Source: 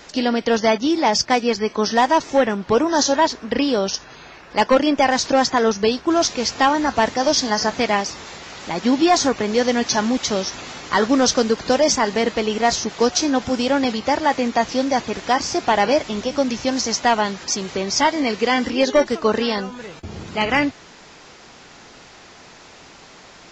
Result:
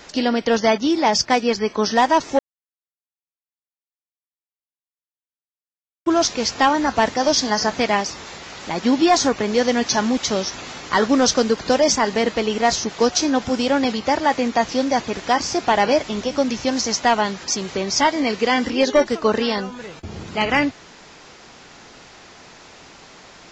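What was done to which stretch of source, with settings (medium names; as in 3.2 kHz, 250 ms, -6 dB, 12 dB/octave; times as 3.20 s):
2.39–6.06 s: mute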